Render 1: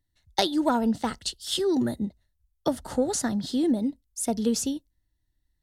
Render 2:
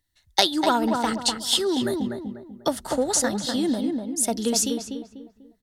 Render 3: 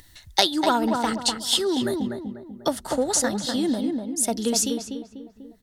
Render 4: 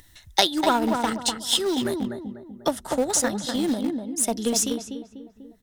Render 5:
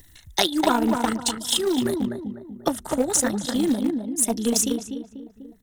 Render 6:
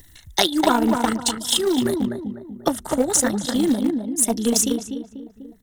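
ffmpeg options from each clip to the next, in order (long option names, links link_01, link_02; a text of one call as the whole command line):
ffmpeg -i in.wav -filter_complex "[0:a]tiltshelf=frequency=650:gain=-5,asplit=2[link_01][link_02];[link_02]adelay=246,lowpass=frequency=1600:poles=1,volume=-4dB,asplit=2[link_03][link_04];[link_04]adelay=246,lowpass=frequency=1600:poles=1,volume=0.37,asplit=2[link_05][link_06];[link_06]adelay=246,lowpass=frequency=1600:poles=1,volume=0.37,asplit=2[link_07][link_08];[link_08]adelay=246,lowpass=frequency=1600:poles=1,volume=0.37,asplit=2[link_09][link_10];[link_10]adelay=246,lowpass=frequency=1600:poles=1,volume=0.37[link_11];[link_03][link_05][link_07][link_09][link_11]amix=inputs=5:normalize=0[link_12];[link_01][link_12]amix=inputs=2:normalize=0,volume=2.5dB" out.wav
ffmpeg -i in.wav -af "acompressor=mode=upward:threshold=-33dB:ratio=2.5" out.wav
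ffmpeg -i in.wav -filter_complex "[0:a]bandreject=frequency=4500:width=8.9,asplit=2[link_01][link_02];[link_02]aeval=exprs='val(0)*gte(abs(val(0)),0.106)':channel_layout=same,volume=-11dB[link_03];[link_01][link_03]amix=inputs=2:normalize=0,volume=-1.5dB" out.wav
ffmpeg -i in.wav -filter_complex "[0:a]acrossover=split=570|5300[link_01][link_02][link_03];[link_01]crystalizer=i=5:c=0[link_04];[link_02]aeval=exprs='val(0)*sin(2*PI*27*n/s)':channel_layout=same[link_05];[link_04][link_05][link_03]amix=inputs=3:normalize=0,volume=3dB" out.wav
ffmpeg -i in.wav -af "bandreject=frequency=2500:width=20,volume=2.5dB" out.wav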